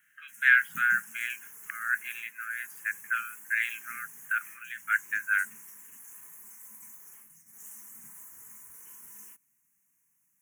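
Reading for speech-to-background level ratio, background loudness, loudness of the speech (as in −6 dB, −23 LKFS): 17.0 dB, −45.5 LKFS, −28.5 LKFS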